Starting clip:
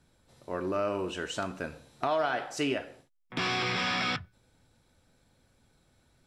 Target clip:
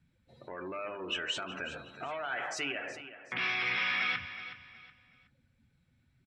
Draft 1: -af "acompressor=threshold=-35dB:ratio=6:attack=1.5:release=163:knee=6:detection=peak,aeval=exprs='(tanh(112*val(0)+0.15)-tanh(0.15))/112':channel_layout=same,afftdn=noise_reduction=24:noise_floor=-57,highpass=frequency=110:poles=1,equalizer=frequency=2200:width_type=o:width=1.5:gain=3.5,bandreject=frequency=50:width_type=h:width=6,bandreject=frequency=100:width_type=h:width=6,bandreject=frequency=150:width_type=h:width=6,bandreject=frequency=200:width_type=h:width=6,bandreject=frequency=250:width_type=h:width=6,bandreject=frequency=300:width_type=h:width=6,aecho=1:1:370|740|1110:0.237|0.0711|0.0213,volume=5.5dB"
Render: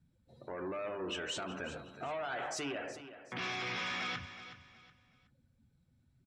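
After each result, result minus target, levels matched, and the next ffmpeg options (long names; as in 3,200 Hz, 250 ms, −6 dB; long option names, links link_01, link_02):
downward compressor: peak gain reduction −5 dB; 2,000 Hz band −2.5 dB
-af "acompressor=threshold=-41dB:ratio=6:attack=1.5:release=163:knee=6:detection=peak,aeval=exprs='(tanh(112*val(0)+0.15)-tanh(0.15))/112':channel_layout=same,afftdn=noise_reduction=24:noise_floor=-57,highpass=frequency=110:poles=1,equalizer=frequency=2200:width_type=o:width=1.5:gain=3.5,bandreject=frequency=50:width_type=h:width=6,bandreject=frequency=100:width_type=h:width=6,bandreject=frequency=150:width_type=h:width=6,bandreject=frequency=200:width_type=h:width=6,bandreject=frequency=250:width_type=h:width=6,bandreject=frequency=300:width_type=h:width=6,aecho=1:1:370|740|1110:0.237|0.0711|0.0213,volume=5.5dB"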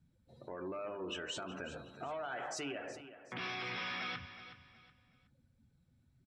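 2,000 Hz band −2.5 dB
-af "acompressor=threshold=-41dB:ratio=6:attack=1.5:release=163:knee=6:detection=peak,aeval=exprs='(tanh(112*val(0)+0.15)-tanh(0.15))/112':channel_layout=same,afftdn=noise_reduction=24:noise_floor=-57,highpass=frequency=110:poles=1,equalizer=frequency=2200:width_type=o:width=1.5:gain=15.5,bandreject=frequency=50:width_type=h:width=6,bandreject=frequency=100:width_type=h:width=6,bandreject=frequency=150:width_type=h:width=6,bandreject=frequency=200:width_type=h:width=6,bandreject=frequency=250:width_type=h:width=6,bandreject=frequency=300:width_type=h:width=6,aecho=1:1:370|740|1110:0.237|0.0711|0.0213,volume=5.5dB"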